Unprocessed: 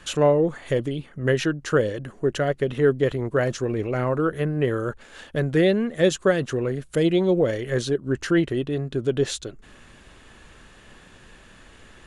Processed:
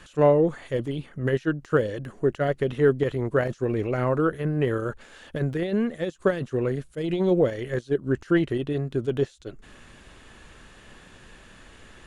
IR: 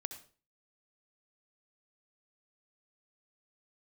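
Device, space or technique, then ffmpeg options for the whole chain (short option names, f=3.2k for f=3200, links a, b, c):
de-esser from a sidechain: -filter_complex "[0:a]asplit=2[a][b];[b]highpass=f=5.4k:w=0.5412,highpass=f=5.4k:w=1.3066,apad=whole_len=532152[c];[a][c]sidechaincompress=threshold=-57dB:ratio=10:attack=2.3:release=29"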